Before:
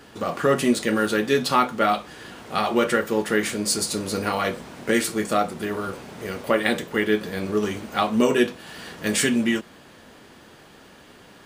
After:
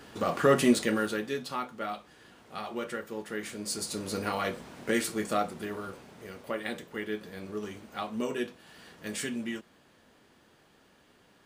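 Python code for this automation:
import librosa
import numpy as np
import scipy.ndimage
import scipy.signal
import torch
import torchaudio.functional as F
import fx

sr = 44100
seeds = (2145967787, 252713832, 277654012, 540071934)

y = fx.gain(x, sr, db=fx.line((0.74, -2.5), (1.45, -15.0), (3.3, -15.0), (4.12, -7.0), (5.41, -7.0), (6.33, -13.5)))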